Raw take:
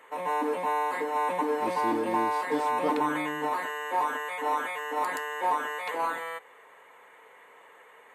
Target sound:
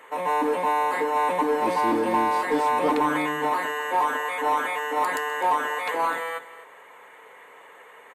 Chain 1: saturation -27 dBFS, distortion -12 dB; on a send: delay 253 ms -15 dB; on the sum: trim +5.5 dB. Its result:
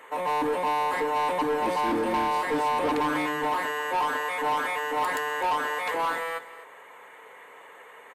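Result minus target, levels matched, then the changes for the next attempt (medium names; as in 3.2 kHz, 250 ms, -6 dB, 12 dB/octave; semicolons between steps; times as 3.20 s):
saturation: distortion +12 dB
change: saturation -18 dBFS, distortion -24 dB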